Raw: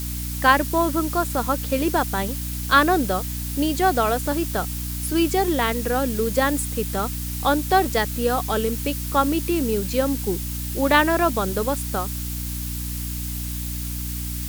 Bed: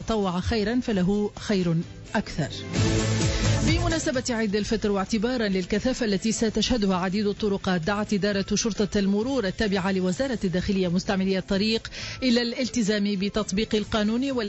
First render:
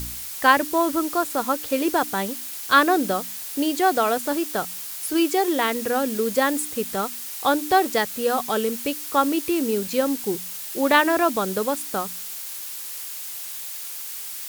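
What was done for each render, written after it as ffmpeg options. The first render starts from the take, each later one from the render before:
-af "bandreject=f=60:t=h:w=4,bandreject=f=120:t=h:w=4,bandreject=f=180:t=h:w=4,bandreject=f=240:t=h:w=4,bandreject=f=300:t=h:w=4"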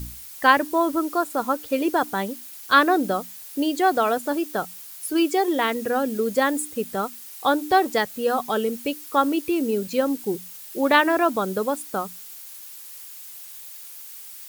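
-af "afftdn=nr=9:nf=-34"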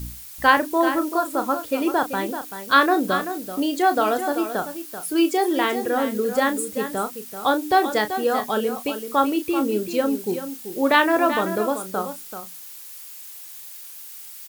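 -filter_complex "[0:a]asplit=2[s0][s1];[s1]adelay=33,volume=0.335[s2];[s0][s2]amix=inputs=2:normalize=0,aecho=1:1:385:0.316"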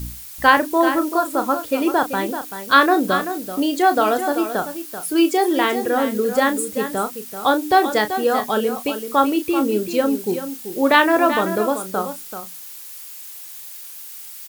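-af "volume=1.41,alimiter=limit=0.891:level=0:latency=1"

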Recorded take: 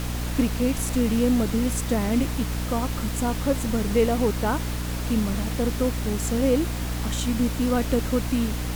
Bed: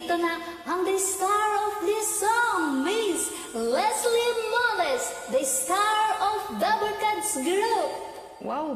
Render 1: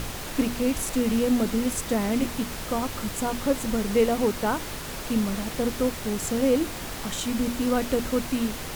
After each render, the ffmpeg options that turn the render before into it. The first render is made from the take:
-af "bandreject=f=60:t=h:w=6,bandreject=f=120:t=h:w=6,bandreject=f=180:t=h:w=6,bandreject=f=240:t=h:w=6,bandreject=f=300:t=h:w=6"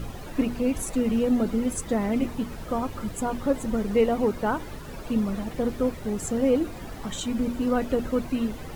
-af "afftdn=nr=13:nf=-35"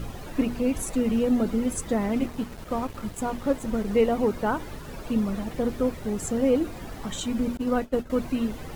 -filter_complex "[0:a]asettb=1/sr,asplit=3[s0][s1][s2];[s0]atrim=end=2.084[s3];[s1]atrim=start=2.08:end=3.87,asetpts=PTS-STARTPTS,afade=t=in:d=0.004:c=qsin,afade=t=out:st=1.786:d=0.004:c=qsin,aeval=exprs='sgn(val(0))*max(abs(val(0))-0.00708,0)':c=same[s4];[s2]atrim=start=3.866[s5];[s3][s4]acrossfade=d=0.004:c1=hsin:c2=qsin[s6];[s6][s5]acrossfade=d=0.004:c1=qsin:c2=hsin,asettb=1/sr,asplit=3[s7][s8][s9];[s7]atrim=end=7.574[s10];[s8]atrim=start=7.57:end=8.1,asetpts=PTS-STARTPTS,afade=t=in:d=0.004:c=qsin,afade=t=out:st=0.526:d=0.004:c=qsin,agate=range=0.0224:threshold=0.0708:ratio=3:release=100:detection=peak[s11];[s9]atrim=start=8.096[s12];[s10][s11]acrossfade=d=0.004:c1=hsin:c2=qsin[s13];[s13][s12]acrossfade=d=0.004:c1=qsin:c2=hsin"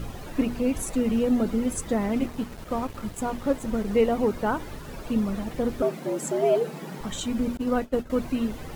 -filter_complex "[0:a]asettb=1/sr,asplit=3[s0][s1][s2];[s0]atrim=end=5.824[s3];[s1]atrim=start=5.82:end=7.01,asetpts=PTS-STARTPTS,afade=t=in:d=0.004:c=qsin,afade=t=out:st=1.186:d=0.004:c=qsin,afreqshift=140[s4];[s2]atrim=start=7.006[s5];[s3][s4]acrossfade=d=0.004:c1=hsin:c2=qsin[s6];[s6][s5]acrossfade=d=0.004:c1=qsin:c2=hsin"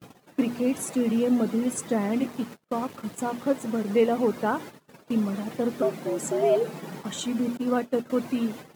-af "highpass=f=140:w=0.5412,highpass=f=140:w=1.3066,agate=range=0.0126:threshold=0.0126:ratio=16:detection=peak"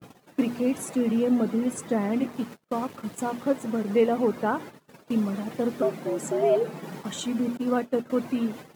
-af "adynamicequalizer=threshold=0.00562:dfrequency=2800:dqfactor=0.7:tfrequency=2800:tqfactor=0.7:attack=5:release=100:ratio=0.375:range=2.5:mode=cutabove:tftype=highshelf"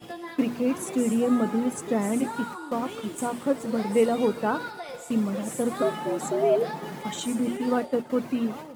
-filter_complex "[1:a]volume=0.224[s0];[0:a][s0]amix=inputs=2:normalize=0"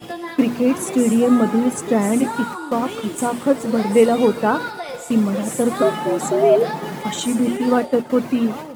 -af "volume=2.51"

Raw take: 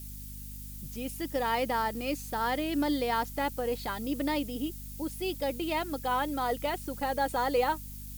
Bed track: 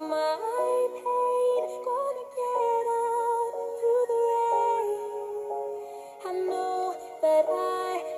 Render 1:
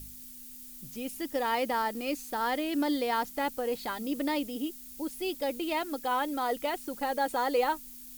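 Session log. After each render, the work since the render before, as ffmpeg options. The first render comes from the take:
-af "bandreject=f=50:t=h:w=4,bandreject=f=100:t=h:w=4,bandreject=f=150:t=h:w=4,bandreject=f=200:t=h:w=4"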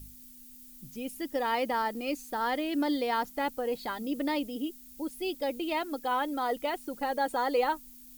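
-af "afftdn=nr=6:nf=-47"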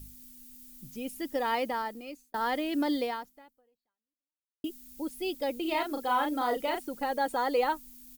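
-filter_complex "[0:a]asplit=3[s0][s1][s2];[s0]afade=t=out:st=5.64:d=0.02[s3];[s1]asplit=2[s4][s5];[s5]adelay=37,volume=0.596[s6];[s4][s6]amix=inputs=2:normalize=0,afade=t=in:st=5.64:d=0.02,afade=t=out:st=6.82:d=0.02[s7];[s2]afade=t=in:st=6.82:d=0.02[s8];[s3][s7][s8]amix=inputs=3:normalize=0,asplit=3[s9][s10][s11];[s9]atrim=end=2.34,asetpts=PTS-STARTPTS,afade=t=out:st=1.54:d=0.8[s12];[s10]atrim=start=2.34:end=4.64,asetpts=PTS-STARTPTS,afade=t=in:d=0.004:c=hsin,afade=t=out:st=0.7:d=1.6:c=exp[s13];[s11]atrim=start=4.64,asetpts=PTS-STARTPTS,afade=t=in:d=0.004:c=hsin[s14];[s12][s13][s14]concat=n=3:v=0:a=1"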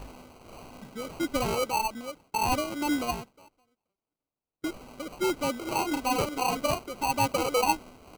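-af "afftfilt=real='re*pow(10,15/40*sin(2*PI*(0.7*log(max(b,1)*sr/1024/100)/log(2)-(-1.7)*(pts-256)/sr)))':imag='im*pow(10,15/40*sin(2*PI*(0.7*log(max(b,1)*sr/1024/100)/log(2)-(-1.7)*(pts-256)/sr)))':win_size=1024:overlap=0.75,acrusher=samples=25:mix=1:aa=0.000001"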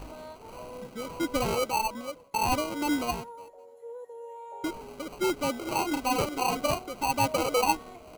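-filter_complex "[1:a]volume=0.126[s0];[0:a][s0]amix=inputs=2:normalize=0"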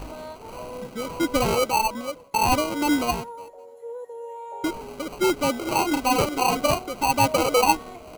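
-af "volume=2"

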